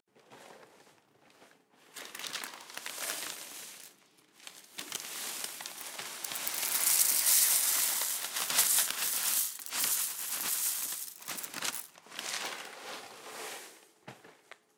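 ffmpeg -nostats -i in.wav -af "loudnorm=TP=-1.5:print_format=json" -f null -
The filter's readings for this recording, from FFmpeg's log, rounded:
"input_i" : "-30.5",
"input_tp" : "-10.7",
"input_lra" : "16.0",
"input_thresh" : "-42.6",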